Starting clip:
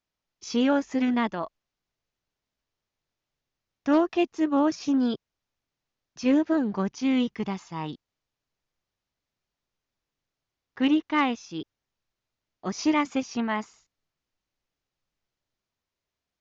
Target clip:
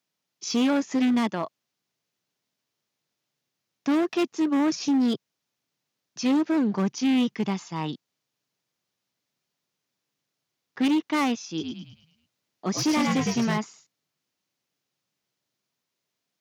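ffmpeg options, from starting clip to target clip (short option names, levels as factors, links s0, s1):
-filter_complex "[0:a]highshelf=f=2500:g=8,asettb=1/sr,asplit=3[s0][s1][s2];[s0]atrim=end=11.474[s3];[s1]atrim=start=11.47:end=13.58,asetpts=PTS-STARTPTS,afade=t=in:d=0.004:c=qsin,afade=t=out:st=2.106:d=0.004:c=qsin,asplit=7[s4][s5][s6][s7][s8][s9][s10];[s5]adelay=106,afreqshift=-66,volume=0.631[s11];[s6]adelay=212,afreqshift=-132,volume=0.309[s12];[s7]adelay=318,afreqshift=-198,volume=0.151[s13];[s8]adelay=424,afreqshift=-264,volume=0.0741[s14];[s9]adelay=530,afreqshift=-330,volume=0.0363[s15];[s10]adelay=636,afreqshift=-396,volume=0.0178[s16];[s4][s11][s12][s13][s14][s15][s16]amix=inputs=7:normalize=0,atrim=end_sample=93051[s17];[s2]atrim=start=13.576[s18];[s3][s17]acrossfade=d=0.004:c1=hsin:c2=qsin[s19];[s19][s18]acrossfade=d=0.004:c1=qsin:c2=hsin,asoftclip=type=hard:threshold=0.075,highpass=f=130:w=0.5412,highpass=f=130:w=1.3066,lowshelf=f=450:g=5"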